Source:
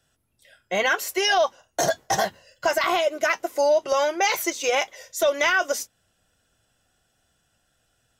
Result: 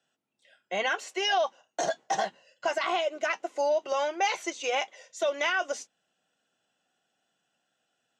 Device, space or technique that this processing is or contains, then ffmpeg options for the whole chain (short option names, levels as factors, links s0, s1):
television speaker: -af "highpass=f=180:w=0.5412,highpass=f=180:w=1.3066,equalizer=f=790:t=q:w=4:g=4,equalizer=f=2800:t=q:w=4:g=4,equalizer=f=5200:t=q:w=4:g=-4,lowpass=f=7500:w=0.5412,lowpass=f=7500:w=1.3066,volume=0.422"